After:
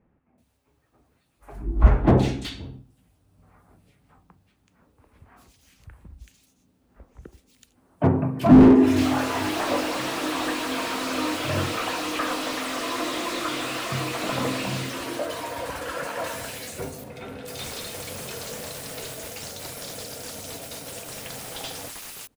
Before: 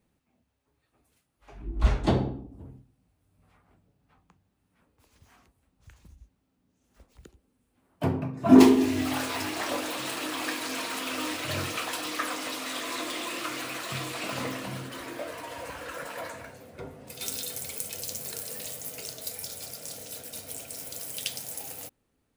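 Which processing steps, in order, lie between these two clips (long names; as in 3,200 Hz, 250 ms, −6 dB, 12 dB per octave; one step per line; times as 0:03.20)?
0:15.86–0:16.66: high-shelf EQ 5,600 Hz +11.5 dB
multiband delay without the direct sound lows, highs 380 ms, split 2,100 Hz
slew-rate limiting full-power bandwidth 46 Hz
level +7.5 dB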